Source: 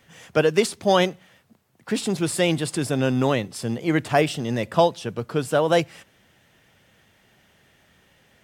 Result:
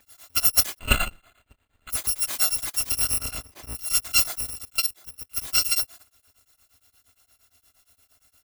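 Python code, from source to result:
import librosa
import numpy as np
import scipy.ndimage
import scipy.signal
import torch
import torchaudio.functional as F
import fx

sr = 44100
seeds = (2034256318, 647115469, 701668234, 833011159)

y = fx.bit_reversed(x, sr, seeds[0], block=256)
y = fx.resample_bad(y, sr, factor=8, down='none', up='hold', at=(0.79, 1.9))
y = fx.high_shelf(y, sr, hz=2900.0, db=-11.0, at=(3.18, 3.75))
y = fx.level_steps(y, sr, step_db=17, at=(4.49, 5.36), fade=0.02)
y = y * np.abs(np.cos(np.pi * 8.6 * np.arange(len(y)) / sr))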